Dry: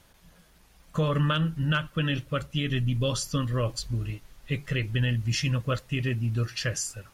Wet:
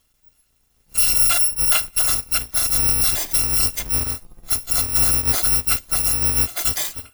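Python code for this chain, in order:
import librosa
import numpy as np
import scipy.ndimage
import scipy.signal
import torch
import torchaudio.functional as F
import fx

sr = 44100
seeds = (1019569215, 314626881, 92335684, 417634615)

y = fx.bit_reversed(x, sr, seeds[0], block=256)
y = fx.noise_reduce_blind(y, sr, reduce_db=14)
y = y * 10.0 ** (8.0 / 20.0)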